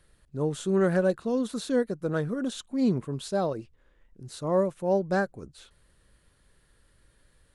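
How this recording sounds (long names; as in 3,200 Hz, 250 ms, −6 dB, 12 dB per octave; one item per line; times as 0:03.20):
background noise floor −65 dBFS
spectral slope −5.0 dB per octave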